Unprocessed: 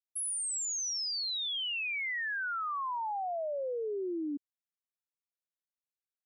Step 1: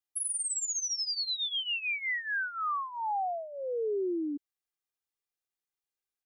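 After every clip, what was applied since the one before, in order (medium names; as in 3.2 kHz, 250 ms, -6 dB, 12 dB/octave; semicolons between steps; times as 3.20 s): comb 2.5 ms, depth 68%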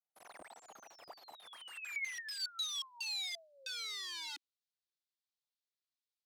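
integer overflow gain 31.5 dB; band-pass sweep 730 Hz -> 4.1 kHz, 1.34–2.41 s; trim +1.5 dB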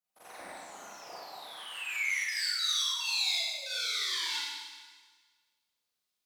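Schroeder reverb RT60 1.5 s, combs from 31 ms, DRR -9.5 dB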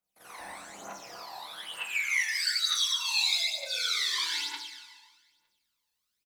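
doubling 25 ms -5 dB; phaser 1.1 Hz, delay 1.2 ms, feedback 59%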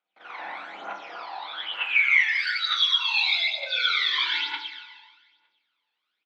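cabinet simulation 300–3600 Hz, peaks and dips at 310 Hz +3 dB, 820 Hz +5 dB, 1.4 kHz +8 dB, 2.3 kHz +6 dB, 3.3 kHz +7 dB; trim +3.5 dB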